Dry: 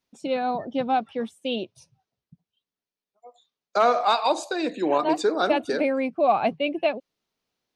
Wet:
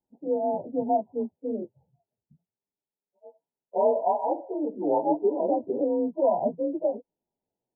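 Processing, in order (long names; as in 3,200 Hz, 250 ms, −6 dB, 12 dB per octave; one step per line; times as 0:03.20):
partials spread apart or drawn together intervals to 91%
linear-phase brick-wall low-pass 1,000 Hz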